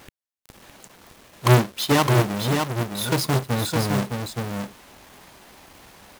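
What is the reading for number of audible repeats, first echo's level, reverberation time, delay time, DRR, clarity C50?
1, -5.0 dB, none, 0.612 s, none, none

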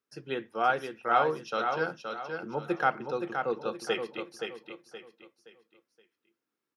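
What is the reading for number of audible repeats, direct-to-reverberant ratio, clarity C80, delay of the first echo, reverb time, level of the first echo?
4, none, none, 0.522 s, none, -6.0 dB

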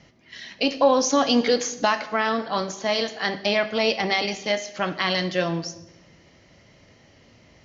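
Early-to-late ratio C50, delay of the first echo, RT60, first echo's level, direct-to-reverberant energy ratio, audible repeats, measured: 13.5 dB, none, 1.0 s, none, 11.0 dB, none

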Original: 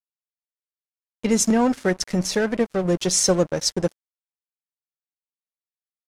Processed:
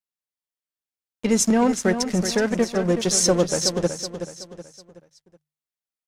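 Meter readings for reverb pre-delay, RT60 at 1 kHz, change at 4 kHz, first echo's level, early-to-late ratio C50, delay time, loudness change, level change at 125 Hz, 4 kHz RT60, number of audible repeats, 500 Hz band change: none, none, +0.5 dB, -9.0 dB, none, 0.374 s, +0.5 dB, 0.0 dB, none, 4, +0.5 dB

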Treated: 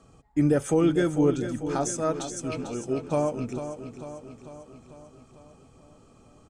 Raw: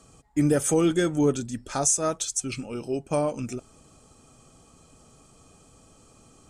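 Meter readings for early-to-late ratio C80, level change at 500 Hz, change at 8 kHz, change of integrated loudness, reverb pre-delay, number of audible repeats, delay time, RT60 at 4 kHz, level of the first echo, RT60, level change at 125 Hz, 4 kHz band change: none, +0.5 dB, -10.0 dB, -1.0 dB, none, 6, 0.446 s, none, -10.0 dB, none, +0.5 dB, -6.0 dB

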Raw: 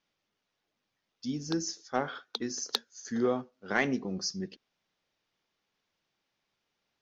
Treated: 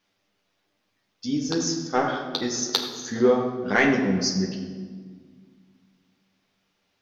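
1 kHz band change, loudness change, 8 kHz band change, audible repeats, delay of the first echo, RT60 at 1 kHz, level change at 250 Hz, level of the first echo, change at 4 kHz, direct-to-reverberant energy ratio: +9.0 dB, +9.5 dB, +8.0 dB, none, none, 1.5 s, +9.5 dB, none, +8.5 dB, 0.0 dB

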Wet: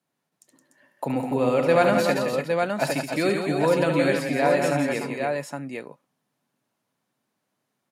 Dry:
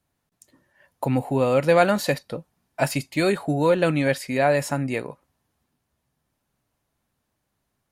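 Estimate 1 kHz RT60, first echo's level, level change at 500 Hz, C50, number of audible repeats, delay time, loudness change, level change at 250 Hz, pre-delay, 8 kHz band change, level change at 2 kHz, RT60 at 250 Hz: none, -7.5 dB, +0.5 dB, none, 4, 72 ms, -0.5 dB, 0.0 dB, none, -1.5 dB, +0.5 dB, none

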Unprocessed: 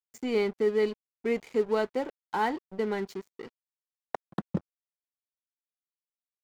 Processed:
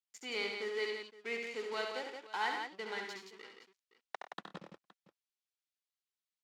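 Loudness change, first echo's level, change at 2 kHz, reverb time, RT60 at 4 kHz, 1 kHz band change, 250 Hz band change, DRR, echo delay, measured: -9.0 dB, -5.5 dB, -0.5 dB, none, none, -7.0 dB, -18.5 dB, none, 69 ms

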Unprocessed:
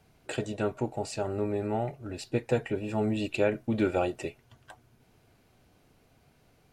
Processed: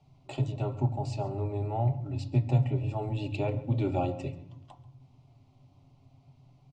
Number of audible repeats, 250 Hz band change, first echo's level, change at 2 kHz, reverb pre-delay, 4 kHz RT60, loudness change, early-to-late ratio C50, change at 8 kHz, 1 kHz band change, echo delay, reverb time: 1, -3.5 dB, -19.0 dB, -9.5 dB, 3 ms, 0.80 s, 0.0 dB, 12.5 dB, under -10 dB, -0.5 dB, 0.137 s, 0.95 s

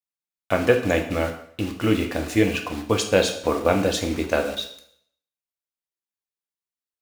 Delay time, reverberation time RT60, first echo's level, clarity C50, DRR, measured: none, 0.65 s, none, 9.0 dB, 3.5 dB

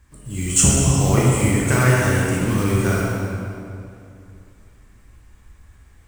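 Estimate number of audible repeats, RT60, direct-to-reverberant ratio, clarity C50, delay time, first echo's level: none, 2.6 s, -5.5 dB, -2.5 dB, none, none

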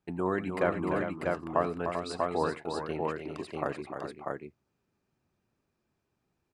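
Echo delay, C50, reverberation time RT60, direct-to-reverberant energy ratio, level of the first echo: 87 ms, none, none, none, -18.0 dB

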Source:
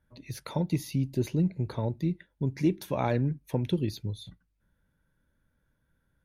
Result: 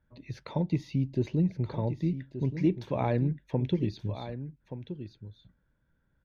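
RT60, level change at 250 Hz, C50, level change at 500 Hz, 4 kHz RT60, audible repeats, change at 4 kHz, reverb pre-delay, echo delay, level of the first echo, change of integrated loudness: none, 0.0 dB, none, 0.0 dB, none, 1, -5.0 dB, none, 1.176 s, -11.0 dB, -0.5 dB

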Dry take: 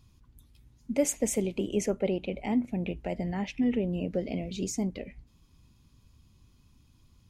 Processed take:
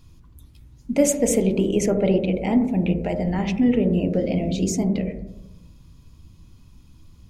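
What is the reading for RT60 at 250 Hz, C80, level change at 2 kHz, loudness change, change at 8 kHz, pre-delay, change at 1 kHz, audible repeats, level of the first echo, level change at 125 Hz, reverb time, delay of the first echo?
1.3 s, 14.5 dB, +7.0 dB, +9.0 dB, +7.0 dB, 3 ms, +8.0 dB, none, none, +11.0 dB, 0.85 s, none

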